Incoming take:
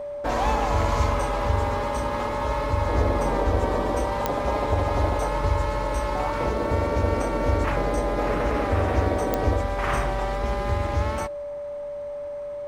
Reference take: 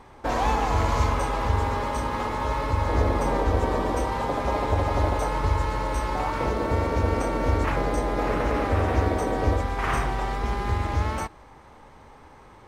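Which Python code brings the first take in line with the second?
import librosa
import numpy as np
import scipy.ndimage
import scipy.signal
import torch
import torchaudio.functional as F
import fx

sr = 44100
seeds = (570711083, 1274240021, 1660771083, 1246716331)

y = fx.fix_declick_ar(x, sr, threshold=10.0)
y = fx.notch(y, sr, hz=580.0, q=30.0)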